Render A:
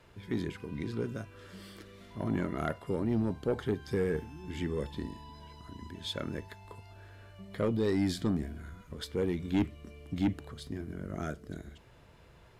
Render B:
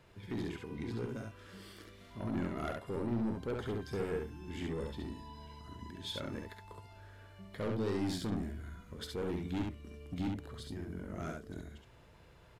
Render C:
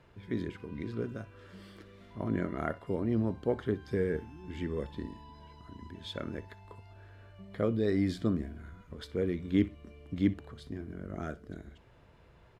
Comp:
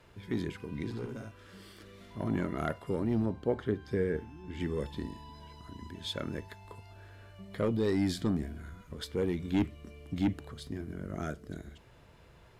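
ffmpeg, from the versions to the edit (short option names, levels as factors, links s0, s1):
-filter_complex "[0:a]asplit=3[s0][s1][s2];[s0]atrim=end=0.902[s3];[1:a]atrim=start=0.898:end=1.822[s4];[s1]atrim=start=1.818:end=3.262[s5];[2:a]atrim=start=3.258:end=4.602[s6];[s2]atrim=start=4.598[s7];[s3][s4]acrossfade=d=0.004:c1=hsin:c2=hsin[s8];[s8][s5]acrossfade=d=0.004:c1=hsin:c2=hsin[s9];[s9][s6]acrossfade=d=0.004:c1=hsin:c2=hsin[s10];[s10][s7]acrossfade=d=0.004:c1=hsin:c2=hsin"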